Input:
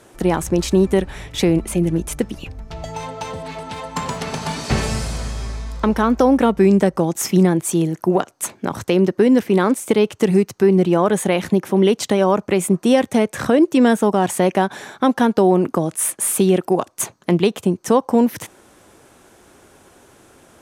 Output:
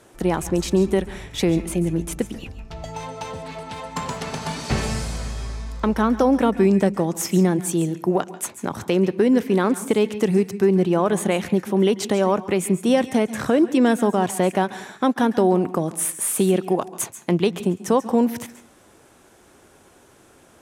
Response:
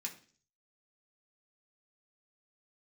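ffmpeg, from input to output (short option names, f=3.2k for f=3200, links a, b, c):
-filter_complex "[0:a]asplit=2[a][b];[1:a]atrim=start_sample=2205,adelay=137[c];[b][c]afir=irnorm=-1:irlink=0,volume=-12dB[d];[a][d]amix=inputs=2:normalize=0,volume=-3.5dB"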